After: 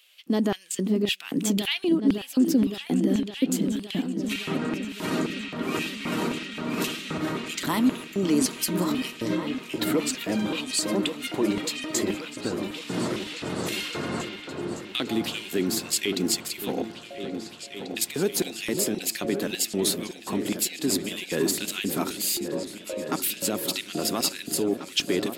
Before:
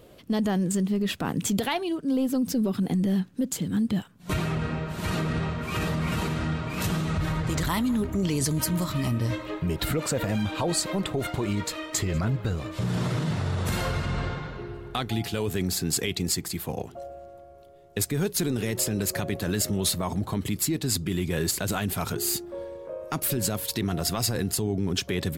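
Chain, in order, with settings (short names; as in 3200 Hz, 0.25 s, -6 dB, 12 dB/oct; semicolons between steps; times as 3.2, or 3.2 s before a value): LFO high-pass square 1.9 Hz 280–2700 Hz; repeats that get brighter 0.563 s, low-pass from 400 Hz, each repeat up 2 oct, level -6 dB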